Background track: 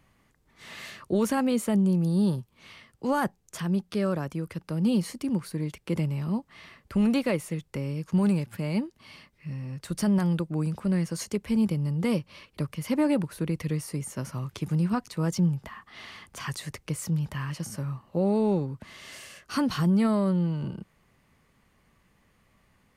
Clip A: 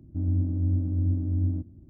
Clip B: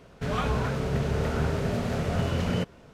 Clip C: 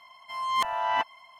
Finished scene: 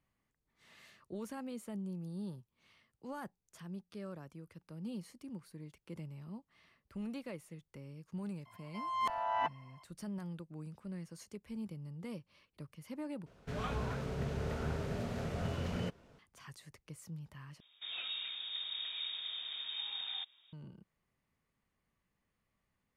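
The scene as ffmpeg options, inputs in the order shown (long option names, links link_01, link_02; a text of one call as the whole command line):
ffmpeg -i bed.wav -i cue0.wav -i cue1.wav -i cue2.wav -filter_complex "[2:a]asplit=2[link_01][link_02];[0:a]volume=-18.5dB[link_03];[3:a]tiltshelf=frequency=1300:gain=6[link_04];[link_02]lowpass=frequency=3200:width_type=q:width=0.5098,lowpass=frequency=3200:width_type=q:width=0.6013,lowpass=frequency=3200:width_type=q:width=0.9,lowpass=frequency=3200:width_type=q:width=2.563,afreqshift=-3800[link_05];[link_03]asplit=3[link_06][link_07][link_08];[link_06]atrim=end=13.264[link_09];[link_01]atrim=end=2.93,asetpts=PTS-STARTPTS,volume=-10.5dB[link_10];[link_07]atrim=start=16.186:end=17.604[link_11];[link_05]atrim=end=2.93,asetpts=PTS-STARTPTS,volume=-15dB[link_12];[link_08]atrim=start=20.526[link_13];[link_04]atrim=end=1.39,asetpts=PTS-STARTPTS,volume=-9dB,afade=type=in:duration=0.004:curve=hsin,afade=type=out:start_time=1.386:duration=0.004:curve=hsin,adelay=8450[link_14];[link_09][link_10]acrossfade=duration=0.004:curve1=hsin:curve2=hsin[link_15];[link_15][link_11]acrossfade=duration=0.004:curve1=hsin:curve2=hsin[link_16];[link_16][link_12]acrossfade=duration=0.004:curve1=hsin:curve2=hsin[link_17];[link_17][link_13]acrossfade=duration=0.004:curve1=hsin:curve2=hsin[link_18];[link_18][link_14]amix=inputs=2:normalize=0" out.wav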